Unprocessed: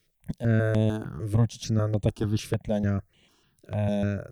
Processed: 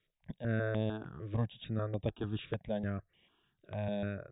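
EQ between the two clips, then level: brick-wall FIR low-pass 3800 Hz; low shelf 360 Hz -6 dB; -6.0 dB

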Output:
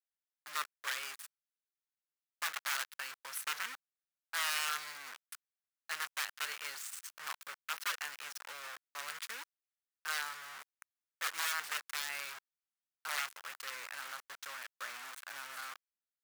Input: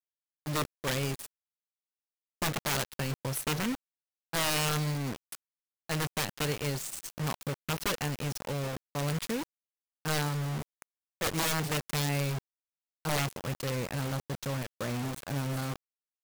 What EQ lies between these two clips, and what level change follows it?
resonant high-pass 1400 Hz, resonance Q 1.9; -6.0 dB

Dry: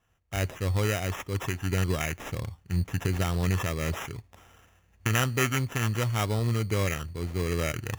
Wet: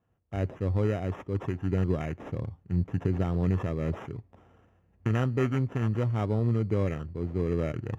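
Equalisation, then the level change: band-pass 310 Hz, Q 0.55; low shelf 360 Hz +5 dB; 0.0 dB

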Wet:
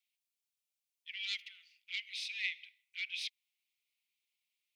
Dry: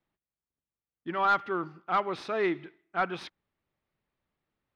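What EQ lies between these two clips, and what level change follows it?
steep high-pass 2200 Hz 72 dB/oct; +5.5 dB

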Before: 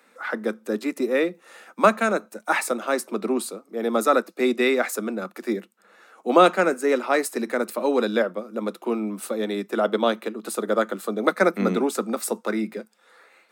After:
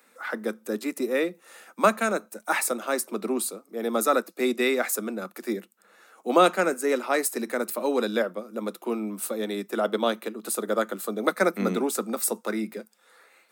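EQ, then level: high shelf 7600 Hz +12 dB; -3.5 dB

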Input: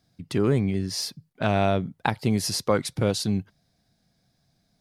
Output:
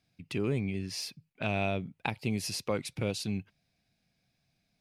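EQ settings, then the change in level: bell 2500 Hz +14.5 dB 0.51 oct; dynamic EQ 1700 Hz, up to -6 dB, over -35 dBFS, Q 0.79; -8.5 dB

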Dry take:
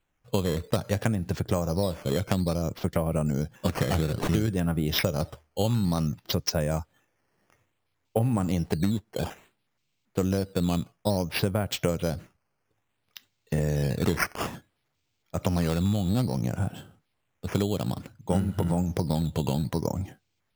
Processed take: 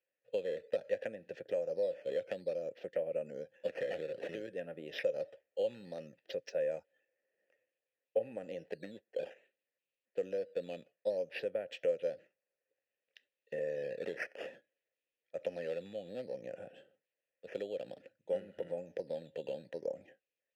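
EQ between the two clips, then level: vowel filter e; Bessel high-pass 180 Hz, order 2; 0.0 dB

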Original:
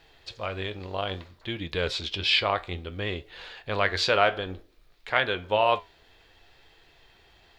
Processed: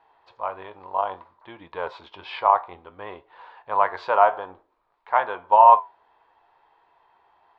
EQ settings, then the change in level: dynamic EQ 760 Hz, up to +6 dB, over -36 dBFS, Q 0.87; synth low-pass 960 Hz, resonance Q 5.6; tilt +4.5 dB/oct; -3.5 dB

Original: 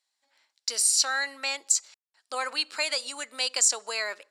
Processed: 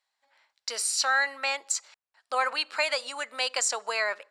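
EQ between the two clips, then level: tone controls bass -5 dB, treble -6 dB; bell 310 Hz -10.5 dB 1.3 oct; high shelf 2000 Hz -10 dB; +9.0 dB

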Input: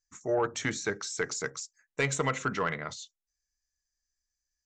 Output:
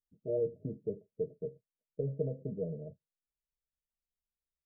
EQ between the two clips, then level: rippled Chebyshev low-pass 650 Hz, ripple 9 dB; 0.0 dB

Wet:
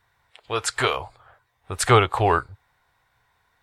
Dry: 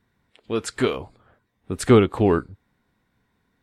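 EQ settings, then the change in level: EQ curve 120 Hz 0 dB, 220 Hz -17 dB, 790 Hz +9 dB, 2100 Hz +6 dB; 0.0 dB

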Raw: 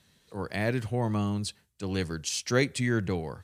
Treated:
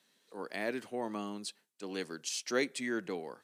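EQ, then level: HPF 240 Hz 24 dB/oct; -5.5 dB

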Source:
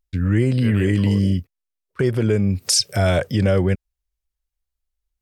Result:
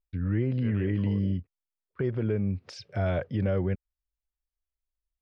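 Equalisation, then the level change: air absorption 250 m; high shelf 4500 Hz -9.5 dB; -9.0 dB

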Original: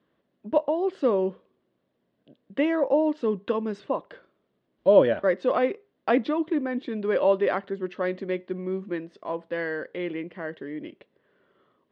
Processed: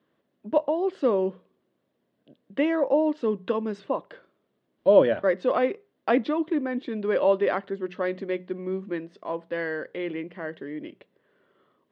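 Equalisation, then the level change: HPF 77 Hz; notches 60/120/180 Hz; 0.0 dB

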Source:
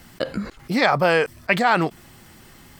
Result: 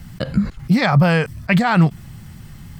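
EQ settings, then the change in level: resonant low shelf 230 Hz +13 dB, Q 1.5; 0.0 dB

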